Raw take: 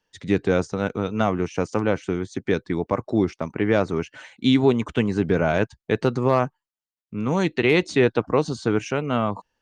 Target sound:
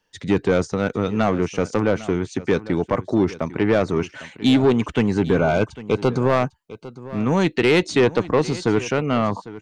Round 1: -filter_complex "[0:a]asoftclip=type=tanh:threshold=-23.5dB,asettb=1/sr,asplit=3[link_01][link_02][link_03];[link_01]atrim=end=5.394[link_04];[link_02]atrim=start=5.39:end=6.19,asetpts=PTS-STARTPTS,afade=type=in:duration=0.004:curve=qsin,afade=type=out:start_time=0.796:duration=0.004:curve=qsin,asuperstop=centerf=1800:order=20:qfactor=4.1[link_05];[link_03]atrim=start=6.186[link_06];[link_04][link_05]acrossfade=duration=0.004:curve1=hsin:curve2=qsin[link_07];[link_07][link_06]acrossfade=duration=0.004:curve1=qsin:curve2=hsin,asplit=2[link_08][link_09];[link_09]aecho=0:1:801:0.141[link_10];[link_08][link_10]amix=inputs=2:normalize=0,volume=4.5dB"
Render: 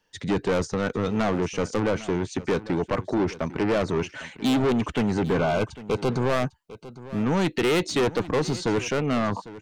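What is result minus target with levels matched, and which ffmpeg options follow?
soft clipping: distortion +8 dB
-filter_complex "[0:a]asoftclip=type=tanh:threshold=-14dB,asettb=1/sr,asplit=3[link_01][link_02][link_03];[link_01]atrim=end=5.394[link_04];[link_02]atrim=start=5.39:end=6.19,asetpts=PTS-STARTPTS,afade=type=in:duration=0.004:curve=qsin,afade=type=out:start_time=0.796:duration=0.004:curve=qsin,asuperstop=centerf=1800:order=20:qfactor=4.1[link_05];[link_03]atrim=start=6.186[link_06];[link_04][link_05]acrossfade=duration=0.004:curve1=hsin:curve2=qsin[link_07];[link_07][link_06]acrossfade=duration=0.004:curve1=qsin:curve2=hsin,asplit=2[link_08][link_09];[link_09]aecho=0:1:801:0.141[link_10];[link_08][link_10]amix=inputs=2:normalize=0,volume=4.5dB"

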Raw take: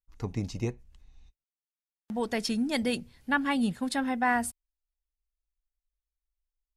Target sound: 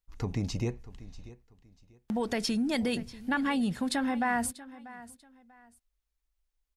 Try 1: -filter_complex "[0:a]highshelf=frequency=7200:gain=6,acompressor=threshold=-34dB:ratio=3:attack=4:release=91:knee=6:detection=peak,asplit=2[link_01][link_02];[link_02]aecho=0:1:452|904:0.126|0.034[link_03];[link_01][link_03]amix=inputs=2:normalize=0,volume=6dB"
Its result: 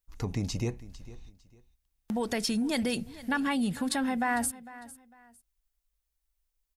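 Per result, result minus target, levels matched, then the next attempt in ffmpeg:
echo 188 ms early; 8,000 Hz band +3.5 dB
-filter_complex "[0:a]highshelf=frequency=7200:gain=6,acompressor=threshold=-34dB:ratio=3:attack=4:release=91:knee=6:detection=peak,asplit=2[link_01][link_02];[link_02]aecho=0:1:640|1280:0.126|0.034[link_03];[link_01][link_03]amix=inputs=2:normalize=0,volume=6dB"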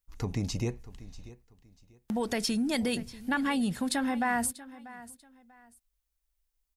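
8,000 Hz band +3.5 dB
-filter_complex "[0:a]highshelf=frequency=7200:gain=-3.5,acompressor=threshold=-34dB:ratio=3:attack=4:release=91:knee=6:detection=peak,asplit=2[link_01][link_02];[link_02]aecho=0:1:640|1280:0.126|0.034[link_03];[link_01][link_03]amix=inputs=2:normalize=0,volume=6dB"

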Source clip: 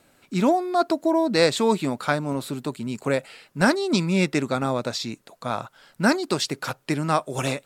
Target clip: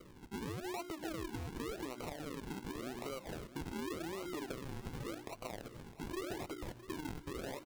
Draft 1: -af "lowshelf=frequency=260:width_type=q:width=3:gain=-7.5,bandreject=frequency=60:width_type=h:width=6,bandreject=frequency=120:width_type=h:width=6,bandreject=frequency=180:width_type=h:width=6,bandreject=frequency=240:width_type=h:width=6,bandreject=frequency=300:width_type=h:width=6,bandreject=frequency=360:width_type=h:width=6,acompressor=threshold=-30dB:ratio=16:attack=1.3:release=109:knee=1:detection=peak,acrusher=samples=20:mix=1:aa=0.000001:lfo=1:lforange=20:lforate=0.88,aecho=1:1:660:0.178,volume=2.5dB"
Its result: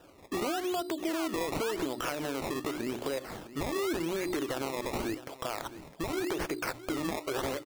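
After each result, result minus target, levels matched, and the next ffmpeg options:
downward compressor: peak gain reduction −10 dB; sample-and-hold swept by an LFO: distortion −13 dB
-af "lowshelf=frequency=260:width_type=q:width=3:gain=-7.5,bandreject=frequency=60:width_type=h:width=6,bandreject=frequency=120:width_type=h:width=6,bandreject=frequency=180:width_type=h:width=6,bandreject=frequency=240:width_type=h:width=6,bandreject=frequency=300:width_type=h:width=6,bandreject=frequency=360:width_type=h:width=6,acompressor=threshold=-40.5dB:ratio=16:attack=1.3:release=109:knee=1:detection=peak,acrusher=samples=20:mix=1:aa=0.000001:lfo=1:lforange=20:lforate=0.88,aecho=1:1:660:0.178,volume=2.5dB"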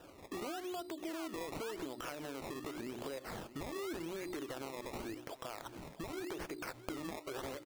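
sample-and-hold swept by an LFO: distortion −13 dB
-af "lowshelf=frequency=260:width_type=q:width=3:gain=-7.5,bandreject=frequency=60:width_type=h:width=6,bandreject=frequency=120:width_type=h:width=6,bandreject=frequency=180:width_type=h:width=6,bandreject=frequency=240:width_type=h:width=6,bandreject=frequency=300:width_type=h:width=6,bandreject=frequency=360:width_type=h:width=6,acompressor=threshold=-40.5dB:ratio=16:attack=1.3:release=109:knee=1:detection=peak,acrusher=samples=50:mix=1:aa=0.000001:lfo=1:lforange=50:lforate=0.88,aecho=1:1:660:0.178,volume=2.5dB"

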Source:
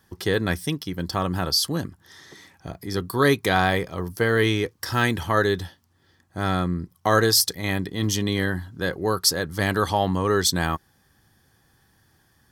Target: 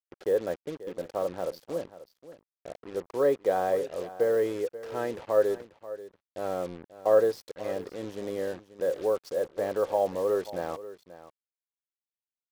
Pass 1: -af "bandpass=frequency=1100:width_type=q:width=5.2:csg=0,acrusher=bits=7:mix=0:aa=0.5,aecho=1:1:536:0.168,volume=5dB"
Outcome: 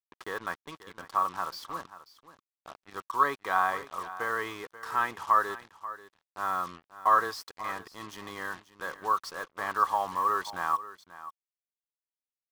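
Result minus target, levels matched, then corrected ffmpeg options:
500 Hz band −13.0 dB
-af "bandpass=frequency=540:width_type=q:width=5.2:csg=0,acrusher=bits=7:mix=0:aa=0.5,aecho=1:1:536:0.168,volume=5dB"

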